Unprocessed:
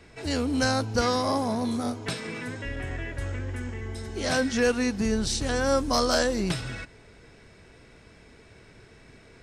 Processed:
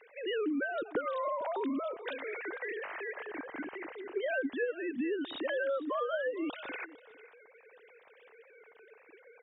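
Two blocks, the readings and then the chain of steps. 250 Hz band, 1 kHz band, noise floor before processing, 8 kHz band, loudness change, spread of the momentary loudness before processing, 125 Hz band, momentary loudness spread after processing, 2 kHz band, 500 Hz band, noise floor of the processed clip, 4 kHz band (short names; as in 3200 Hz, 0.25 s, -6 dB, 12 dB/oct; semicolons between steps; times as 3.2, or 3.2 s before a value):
-9.5 dB, -8.5 dB, -53 dBFS, under -40 dB, -8.5 dB, 11 LU, under -30 dB, 9 LU, -5.5 dB, -6.0 dB, -61 dBFS, -15.5 dB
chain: sine-wave speech; compressor 16:1, threshold -30 dBFS, peak gain reduction 18 dB; echo 0.453 s -19 dB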